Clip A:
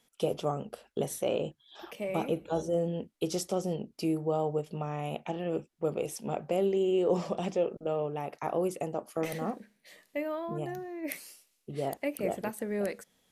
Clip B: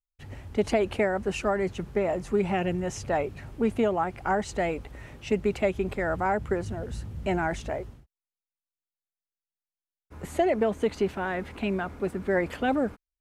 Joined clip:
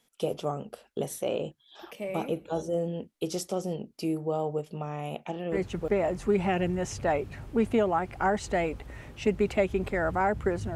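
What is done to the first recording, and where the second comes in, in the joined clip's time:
clip A
0:05.70: continue with clip B from 0:01.75, crossfade 0.36 s logarithmic

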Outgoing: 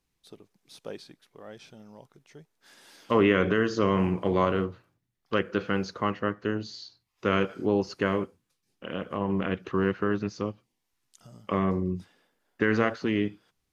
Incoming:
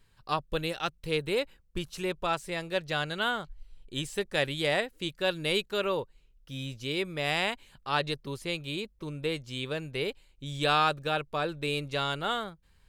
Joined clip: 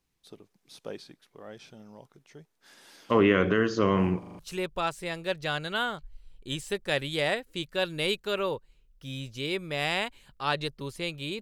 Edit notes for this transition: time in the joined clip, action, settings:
outgoing
0:04.19: stutter in place 0.04 s, 5 plays
0:04.39: continue with incoming from 0:01.85

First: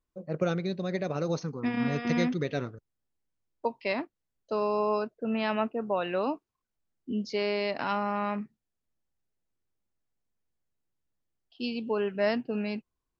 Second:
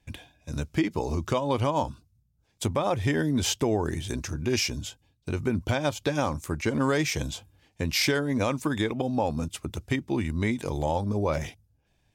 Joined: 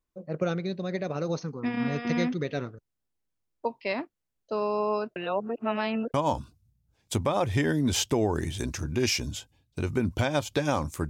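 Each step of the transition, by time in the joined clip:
first
0:05.16–0:06.14: reverse
0:06.14: continue with second from 0:01.64

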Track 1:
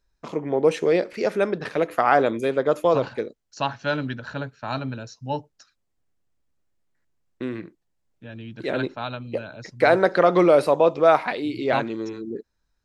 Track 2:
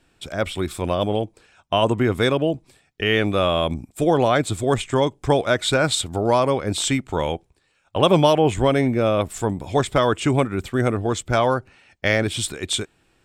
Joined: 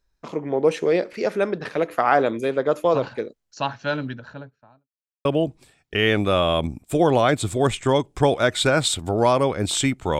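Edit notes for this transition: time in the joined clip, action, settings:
track 1
0:03.86–0:04.88: fade out and dull
0:04.88–0:05.25: silence
0:05.25: continue with track 2 from 0:02.32

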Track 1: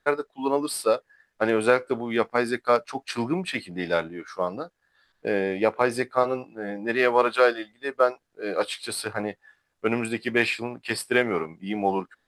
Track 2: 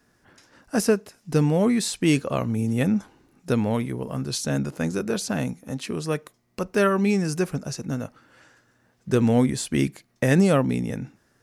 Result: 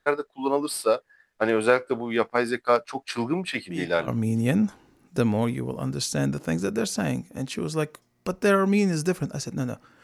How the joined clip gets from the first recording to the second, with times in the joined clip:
track 1
0:03.67: mix in track 2 from 0:01.99 0.41 s −15 dB
0:04.08: continue with track 2 from 0:02.40

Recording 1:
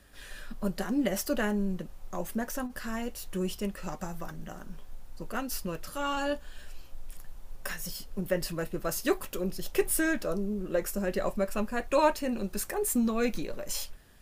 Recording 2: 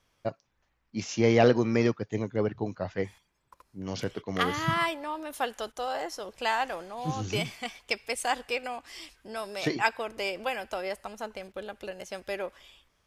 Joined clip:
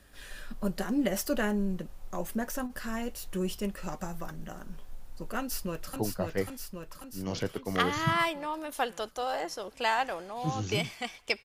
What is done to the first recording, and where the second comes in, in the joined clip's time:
recording 1
0:05.39–0:05.96: delay throw 540 ms, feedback 65%, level −3 dB
0:05.96: continue with recording 2 from 0:02.57

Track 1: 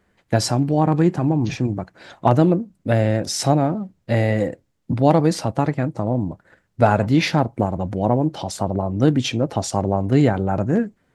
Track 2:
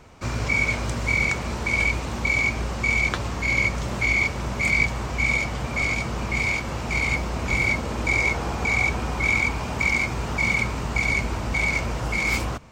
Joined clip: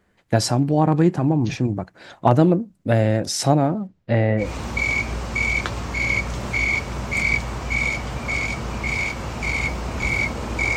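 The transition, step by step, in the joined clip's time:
track 1
0:03.87–0:04.53: low-pass filter 6,200 Hz → 1,300 Hz
0:04.45: continue with track 2 from 0:01.93, crossfade 0.16 s

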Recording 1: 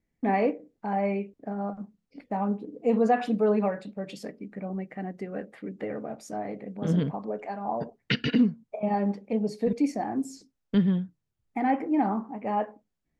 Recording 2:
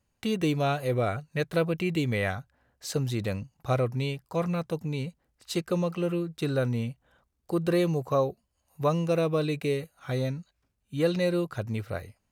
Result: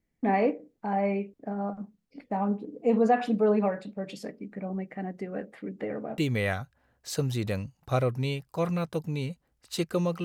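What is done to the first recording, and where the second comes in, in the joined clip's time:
recording 1
0:06.18: continue with recording 2 from 0:01.95

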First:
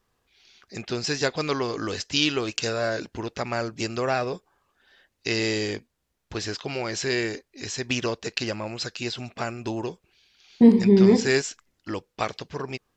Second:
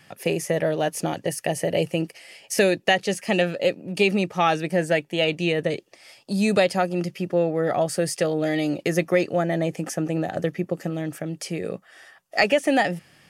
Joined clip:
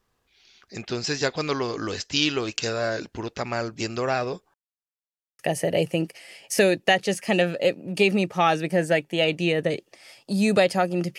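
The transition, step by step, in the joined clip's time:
first
0:04.54–0:05.39: silence
0:05.39: continue with second from 0:01.39

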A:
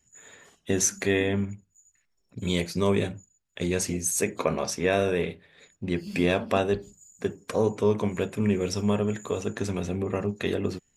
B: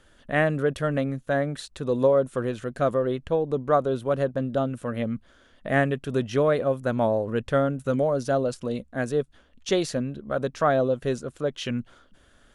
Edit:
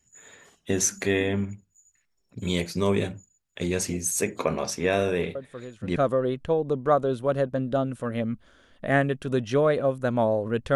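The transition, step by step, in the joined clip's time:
A
0:05.35: mix in B from 0:02.17 0.61 s −12 dB
0:05.96: continue with B from 0:02.78

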